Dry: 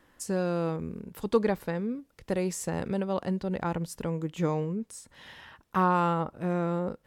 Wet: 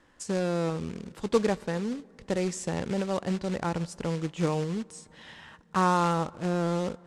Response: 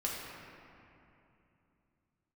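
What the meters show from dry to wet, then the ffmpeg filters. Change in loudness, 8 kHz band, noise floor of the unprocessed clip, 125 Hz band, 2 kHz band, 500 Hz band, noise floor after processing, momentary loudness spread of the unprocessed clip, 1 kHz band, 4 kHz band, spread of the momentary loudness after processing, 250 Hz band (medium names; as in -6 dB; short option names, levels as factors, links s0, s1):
+0.5 dB, +1.0 dB, -67 dBFS, +0.5 dB, +1.5 dB, +0.5 dB, -58 dBFS, 13 LU, +0.5 dB, +6.0 dB, 13 LU, +0.5 dB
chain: -filter_complex "[0:a]acrusher=bits=3:mode=log:mix=0:aa=0.000001,lowpass=f=8600:w=0.5412,lowpass=f=8600:w=1.3066,asplit=2[s0][s1];[1:a]atrim=start_sample=2205,asetrate=35721,aresample=44100[s2];[s1][s2]afir=irnorm=-1:irlink=0,volume=0.0447[s3];[s0][s3]amix=inputs=2:normalize=0"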